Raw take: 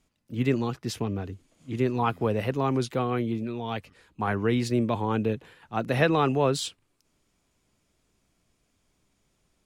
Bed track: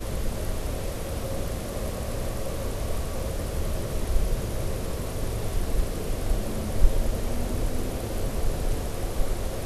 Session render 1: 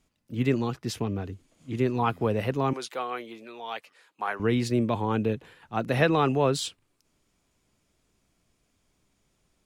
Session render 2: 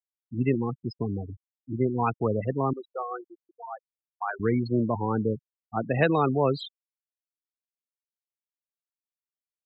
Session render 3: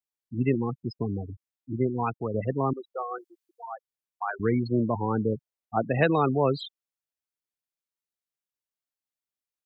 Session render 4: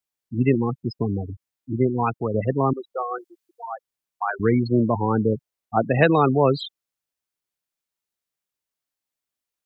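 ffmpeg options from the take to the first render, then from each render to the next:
-filter_complex "[0:a]asettb=1/sr,asplit=3[a][b][c];[a]atrim=end=2.734[d];[b]atrim=start=2.73:end=4.4,asetpts=PTS-STARTPTS,afade=t=in:d=0.004:c=qsin,afade=t=out:st=1.666:d=0.004:c=qsin,highpass=630[e];[c]atrim=start=4.396[f];[d][e]acrossfade=d=0.004:c1=hsin:c2=qsin[g];[g][f]acrossfade=d=0.004:c1=qsin:c2=hsin"
-af "afftfilt=real='re*gte(hypot(re,im),0.0708)':imag='im*gte(hypot(re,im),0.0708)':win_size=1024:overlap=0.75"
-filter_complex "[0:a]asettb=1/sr,asplit=3[a][b][c];[a]atrim=end=3.184[d];[b]atrim=start=3.18:end=3.72,asetpts=PTS-STARTPTS,afade=t=in:d=0.004:c=qsin,afade=t=out:st=0.536:d=0.004:c=qsin,tiltshelf=f=850:g=-8.5[e];[c]atrim=start=3.716[f];[d][e]acrossfade=d=0.004:c1=hsin:c2=qsin[g];[g][f]acrossfade=d=0.004:c1=qsin:c2=hsin,asettb=1/sr,asplit=3[h][i][j];[h]atrim=end=5.324[k];[i]atrim=start=5.32:end=5.88,asetpts=PTS-STARTPTS,afade=t=in:d=0.004:c=qsin,afade=t=out:st=0.556:d=0.004:c=qsin,equalizer=f=630:w=1.3:g=5[l];[j]atrim=start=5.876[m];[k][l]acrossfade=d=0.004:c1=hsin:c2=qsin[n];[n][m]acrossfade=d=0.004:c1=qsin:c2=hsin,asplit=2[o][p];[o]atrim=end=2.34,asetpts=PTS-STARTPTS,afade=t=out:st=1.76:d=0.58:silence=0.473151[q];[p]atrim=start=2.34,asetpts=PTS-STARTPTS,afade=t=in:d=0.004:c=hsin:silence=0.473151[r];[q][r]concat=n=2:v=0:a=1"
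-af "volume=5.5dB"

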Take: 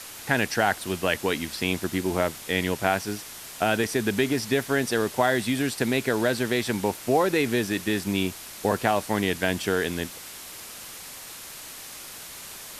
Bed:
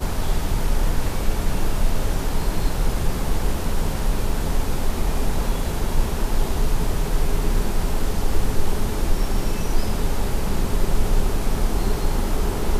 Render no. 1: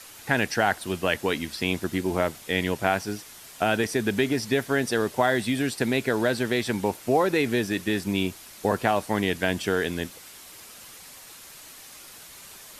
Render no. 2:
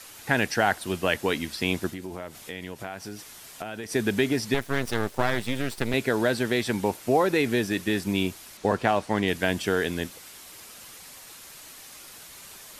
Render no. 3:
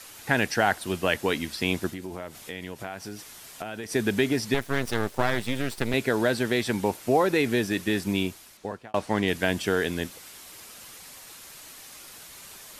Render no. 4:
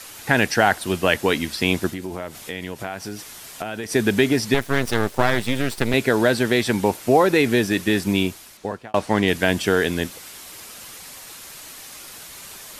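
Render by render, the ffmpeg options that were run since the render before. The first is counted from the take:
-af "afftdn=nr=6:nf=-41"
-filter_complex "[0:a]asplit=3[a][b][c];[a]afade=t=out:st=1.9:d=0.02[d];[b]acompressor=threshold=-35dB:ratio=3:attack=3.2:release=140:knee=1:detection=peak,afade=t=in:st=1.9:d=0.02,afade=t=out:st=3.9:d=0.02[e];[c]afade=t=in:st=3.9:d=0.02[f];[d][e][f]amix=inputs=3:normalize=0,asettb=1/sr,asplit=3[g][h][i];[g]atrim=end=4.544[j];[h]atrim=start=4.54:end=5.94,asetpts=PTS-STARTPTS,afade=t=in:d=0.004:c=qsin,afade=t=out:st=1.396:d=0.004:c=qsin,aeval=exprs='max(val(0),0)':c=same[k];[i]atrim=start=5.936[l];[j][k]acrossfade=d=0.004:c1=hsin:c2=qsin[m];[m][l]acrossfade=d=0.004:c1=qsin:c2=hsin,asettb=1/sr,asplit=3[n][o][p];[n]atrim=end=8.574[q];[o]atrim=start=8.57:end=9.28,asetpts=PTS-STARTPTS,afade=t=in:d=0.004:c=qsin,afade=t=out:st=0.706:d=0.004:c=qsin,adynamicsmooth=sensitivity=5:basefreq=7.2k[r];[p]atrim=start=9.276[s];[q][r]acrossfade=d=0.004:c1=hsin:c2=qsin[t];[t][s]acrossfade=d=0.004:c1=qsin:c2=hsin"
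-filter_complex "[0:a]asplit=2[a][b];[a]atrim=end=8.94,asetpts=PTS-STARTPTS,afade=t=out:st=8.12:d=0.82[c];[b]atrim=start=8.94,asetpts=PTS-STARTPTS,afade=t=in:d=0.004:c=hsin[d];[c][d]concat=n=2:v=0:a=1"
-af "volume=6dB,alimiter=limit=-2dB:level=0:latency=1"

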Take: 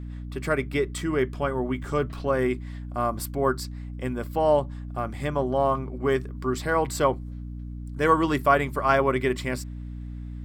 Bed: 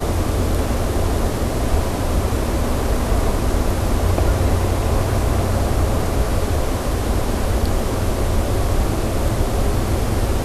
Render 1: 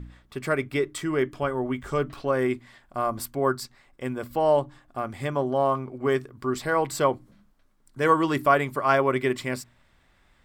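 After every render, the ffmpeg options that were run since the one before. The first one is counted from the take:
-af "bandreject=f=60:t=h:w=4,bandreject=f=120:t=h:w=4,bandreject=f=180:t=h:w=4,bandreject=f=240:t=h:w=4,bandreject=f=300:t=h:w=4"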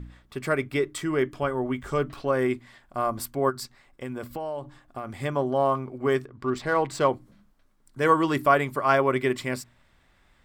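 -filter_complex "[0:a]asplit=3[a][b][c];[a]afade=t=out:st=3.49:d=0.02[d];[b]acompressor=threshold=-29dB:ratio=6:attack=3.2:release=140:knee=1:detection=peak,afade=t=in:st=3.49:d=0.02,afade=t=out:st=5.18:d=0.02[e];[c]afade=t=in:st=5.18:d=0.02[f];[d][e][f]amix=inputs=3:normalize=0,asettb=1/sr,asplit=3[g][h][i];[g]atrim=end=6.254[j];[h]atrim=start=6.25:end=7.09,asetpts=PTS-STARTPTS,afade=t=in:d=0.004:c=qsin,afade=t=out:st=0.836:d=0.004:c=qsin,adynamicsmooth=sensitivity=6:basefreq=4.3k[k];[i]atrim=start=7.086[l];[j][k]acrossfade=d=0.004:c1=hsin:c2=qsin[m];[m][l]acrossfade=d=0.004:c1=qsin:c2=hsin"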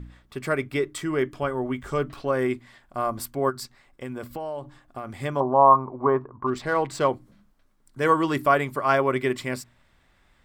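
-filter_complex "[0:a]asettb=1/sr,asplit=3[a][b][c];[a]atrim=end=5.404[d];[b]atrim=start=5.4:end=6.47,asetpts=PTS-STARTPTS,afade=t=in:d=0.004:c=qsin,afade=t=out:st=1.066:d=0.004:c=qsin,lowpass=f=1k:t=q:w=6.3[e];[c]atrim=start=6.466[f];[d][e]acrossfade=d=0.004:c1=hsin:c2=qsin[g];[g][f]acrossfade=d=0.004:c1=qsin:c2=hsin"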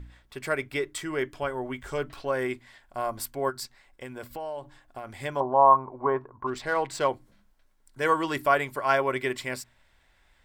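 -af "equalizer=f=190:t=o:w=2.3:g=-9,bandreject=f=1.2k:w=7.9"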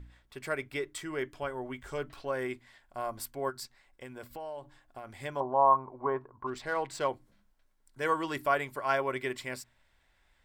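-af "volume=-5.5dB"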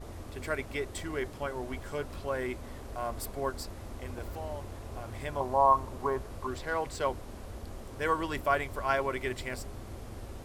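-filter_complex "[1:a]volume=-24dB[a];[0:a][a]amix=inputs=2:normalize=0"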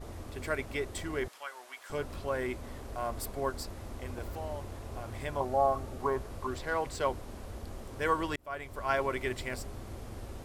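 -filter_complex "[0:a]asettb=1/sr,asplit=3[a][b][c];[a]atrim=end=1.284[d];[b]atrim=start=1.28:end=1.9,asetpts=PTS-STARTPTS,afade=t=in:d=0.004:c=qsin,afade=t=out:st=0.616:d=0.004:c=qsin,highpass=1.2k[e];[c]atrim=start=1.896[f];[d][e]acrossfade=d=0.004:c1=hsin:c2=qsin[g];[g][f]acrossfade=d=0.004:c1=qsin:c2=hsin,asettb=1/sr,asplit=3[h][i][j];[h]atrim=end=5.454[k];[i]atrim=start=5.45:end=6,asetpts=PTS-STARTPTS,afade=t=in:d=0.004:c=qsin,afade=t=out:st=0.546:d=0.004:c=qsin,asuperstop=centerf=1000:order=12:qfactor=4.9[l];[j]atrim=start=5.996[m];[k][l]acrossfade=d=0.004:c1=hsin:c2=qsin[n];[n][m]acrossfade=d=0.004:c1=qsin:c2=hsin,asplit=2[o][p];[o]atrim=end=8.36,asetpts=PTS-STARTPTS,afade=t=out:st=8.356:d=0.004:c=hsin[q];[p]atrim=start=8.36,asetpts=PTS-STARTPTS,afade=t=in:d=0.65[r];[q][r]concat=n=2:v=0:a=1"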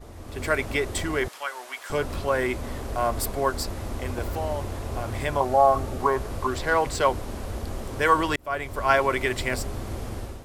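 -filter_complex "[0:a]acrossover=split=570[a][b];[a]alimiter=level_in=8.5dB:limit=-24dB:level=0:latency=1,volume=-8.5dB[c];[c][b]amix=inputs=2:normalize=0,dynaudnorm=f=140:g=5:m=10.5dB"

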